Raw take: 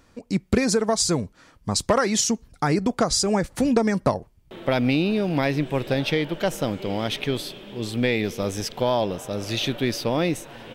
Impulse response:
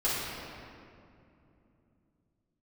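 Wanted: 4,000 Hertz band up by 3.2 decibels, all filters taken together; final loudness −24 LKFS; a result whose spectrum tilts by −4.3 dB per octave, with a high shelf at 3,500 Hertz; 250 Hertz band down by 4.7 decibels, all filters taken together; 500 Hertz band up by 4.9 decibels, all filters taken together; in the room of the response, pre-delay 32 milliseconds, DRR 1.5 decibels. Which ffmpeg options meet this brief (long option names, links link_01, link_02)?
-filter_complex "[0:a]equalizer=frequency=250:width_type=o:gain=-8.5,equalizer=frequency=500:width_type=o:gain=8,highshelf=frequency=3500:gain=-5.5,equalizer=frequency=4000:width_type=o:gain=8,asplit=2[link_01][link_02];[1:a]atrim=start_sample=2205,adelay=32[link_03];[link_02][link_03]afir=irnorm=-1:irlink=0,volume=-12dB[link_04];[link_01][link_04]amix=inputs=2:normalize=0,volume=-4.5dB"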